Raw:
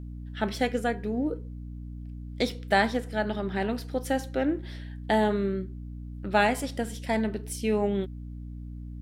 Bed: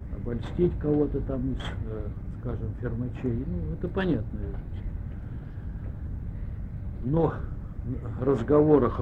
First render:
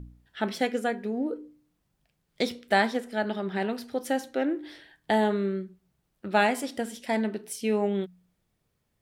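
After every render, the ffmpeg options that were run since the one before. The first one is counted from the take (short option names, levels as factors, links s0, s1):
-af "bandreject=f=60:t=h:w=4,bandreject=f=120:t=h:w=4,bandreject=f=180:t=h:w=4,bandreject=f=240:t=h:w=4,bandreject=f=300:t=h:w=4"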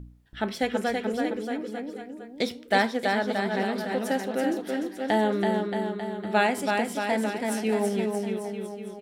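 -af "aecho=1:1:330|627|894.3|1135|1351:0.631|0.398|0.251|0.158|0.1"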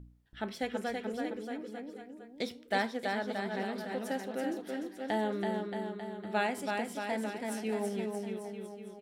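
-af "volume=0.376"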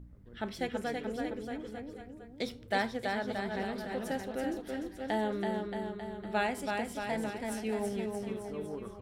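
-filter_complex "[1:a]volume=0.075[s0];[0:a][s0]amix=inputs=2:normalize=0"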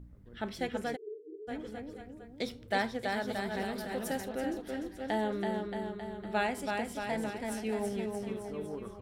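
-filter_complex "[0:a]asplit=3[s0][s1][s2];[s0]afade=t=out:st=0.95:d=0.02[s3];[s1]asuperpass=centerf=380:order=20:qfactor=2.8,afade=t=in:st=0.95:d=0.02,afade=t=out:st=1.47:d=0.02[s4];[s2]afade=t=in:st=1.47:d=0.02[s5];[s3][s4][s5]amix=inputs=3:normalize=0,asettb=1/sr,asplit=3[s6][s7][s8];[s6]atrim=end=3.124[s9];[s7]atrim=start=3.12:end=4.29,asetpts=PTS-STARTPTS,afade=t=in:d=0.004:c=qsin,afade=t=out:st=1.166:d=0.004:c=qsin,highshelf=f=7400:g=11.5[s10];[s8]atrim=start=4.286[s11];[s9][s10]acrossfade=d=0.004:c1=hsin:c2=qsin[s12];[s12][s11]acrossfade=d=0.004:c1=qsin:c2=hsin"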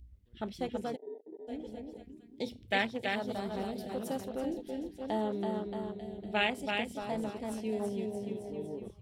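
-af "afwtdn=0.0158,highshelf=f=2000:t=q:w=1.5:g=10.5"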